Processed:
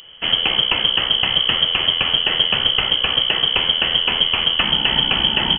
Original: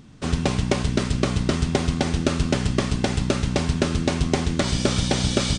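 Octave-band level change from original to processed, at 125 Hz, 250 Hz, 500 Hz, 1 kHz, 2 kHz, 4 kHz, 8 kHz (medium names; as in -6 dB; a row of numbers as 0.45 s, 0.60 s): -11.5 dB, -10.0 dB, -5.0 dB, +4.0 dB, +10.0 dB, +18.0 dB, under -40 dB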